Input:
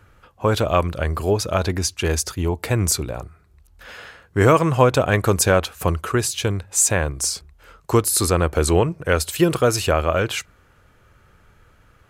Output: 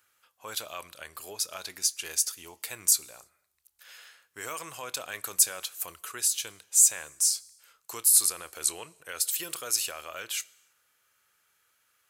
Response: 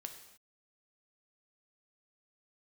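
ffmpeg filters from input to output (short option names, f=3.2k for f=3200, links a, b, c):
-filter_complex "[0:a]alimiter=limit=-7.5dB:level=0:latency=1:release=22,aderivative,asplit=2[a][b];[1:a]atrim=start_sample=2205,adelay=27[c];[b][c]afir=irnorm=-1:irlink=0,volume=-13dB[d];[a][d]amix=inputs=2:normalize=0,volume=-1dB"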